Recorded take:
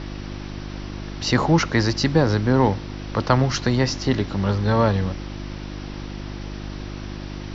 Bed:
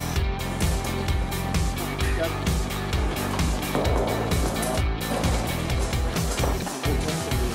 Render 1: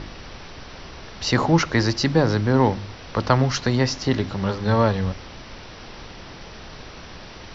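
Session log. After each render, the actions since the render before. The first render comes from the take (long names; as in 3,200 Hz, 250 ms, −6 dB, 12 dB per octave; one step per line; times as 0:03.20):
hum removal 50 Hz, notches 7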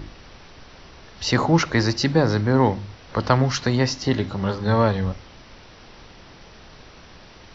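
noise reduction from a noise print 6 dB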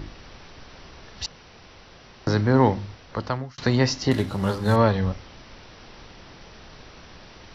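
0:01.26–0:02.27: fill with room tone
0:02.83–0:03.58: fade out
0:04.11–0:04.76: variable-slope delta modulation 64 kbit/s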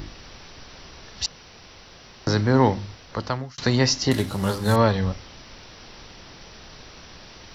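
high-shelf EQ 5,400 Hz +12 dB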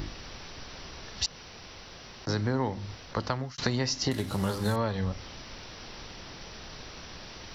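downward compressor 6 to 1, threshold −25 dBFS, peak gain reduction 12.5 dB
level that may rise only so fast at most 600 dB per second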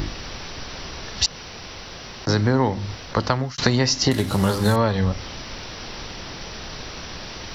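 level +9.5 dB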